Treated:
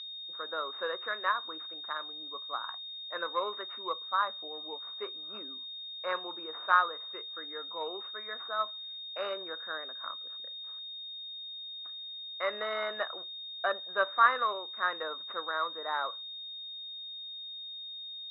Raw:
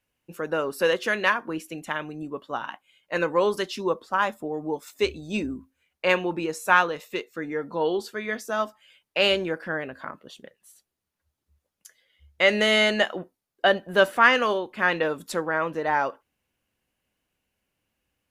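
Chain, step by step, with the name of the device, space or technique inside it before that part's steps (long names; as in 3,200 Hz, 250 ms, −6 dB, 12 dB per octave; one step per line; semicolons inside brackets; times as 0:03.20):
toy sound module (linearly interpolated sample-rate reduction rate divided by 6×; switching amplifier with a slow clock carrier 3,700 Hz; loudspeaker in its box 780–4,000 Hz, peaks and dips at 830 Hz −6 dB, 1,200 Hz +9 dB, 2,500 Hz −5 dB, 3,600 Hz −8 dB)
level −5 dB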